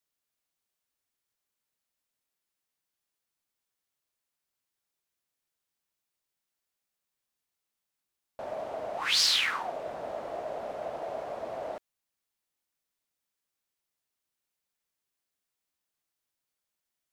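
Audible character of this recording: noise floor -86 dBFS; spectral tilt 0.0 dB/octave

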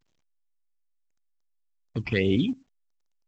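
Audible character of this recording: phasing stages 8, 2.3 Hz, lowest notch 500–1600 Hz; a quantiser's noise floor 12-bit, dither none; tremolo saw up 0.79 Hz, depth 70%; A-law

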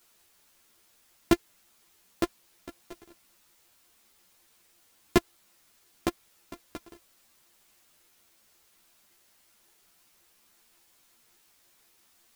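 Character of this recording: a buzz of ramps at a fixed pitch in blocks of 128 samples; chopped level 5.5 Hz, depth 65%, duty 45%; a quantiser's noise floor 10-bit, dither triangular; a shimmering, thickened sound

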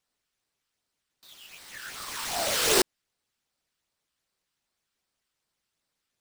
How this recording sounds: phasing stages 12, 2.6 Hz, lowest notch 670–2500 Hz; aliases and images of a low sample rate 17 kHz, jitter 0%

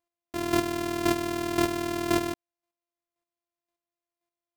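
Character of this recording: a buzz of ramps at a fixed pitch in blocks of 128 samples; chopped level 1.9 Hz, depth 60%, duty 15%

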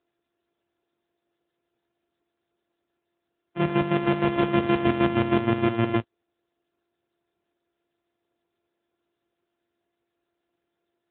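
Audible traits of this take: a buzz of ramps at a fixed pitch in blocks of 128 samples; chopped level 6.4 Hz, depth 65%, duty 40%; AMR-NB

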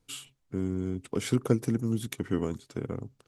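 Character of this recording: noise floor -73 dBFS; spectral tilt -7.0 dB/octave

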